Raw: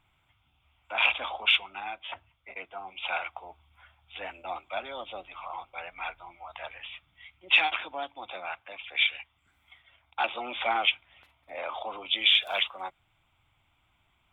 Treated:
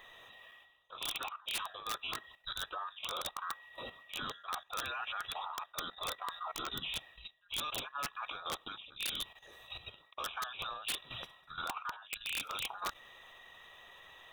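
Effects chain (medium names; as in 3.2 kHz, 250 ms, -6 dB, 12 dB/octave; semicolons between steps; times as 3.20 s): every band turned upside down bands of 2 kHz; level held to a coarse grid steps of 12 dB; dynamic bell 410 Hz, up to -4 dB, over -52 dBFS, Q 1; reverse; compression 16:1, threshold -52 dBFS, peak gain reduction 31 dB; reverse; integer overflow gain 45 dB; trim +16 dB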